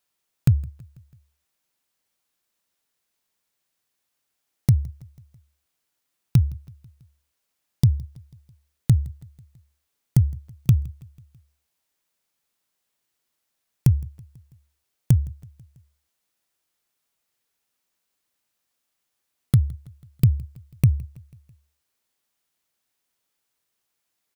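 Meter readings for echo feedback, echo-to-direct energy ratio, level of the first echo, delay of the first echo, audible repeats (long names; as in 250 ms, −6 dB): 59%, −22.0 dB, −24.0 dB, 164 ms, 3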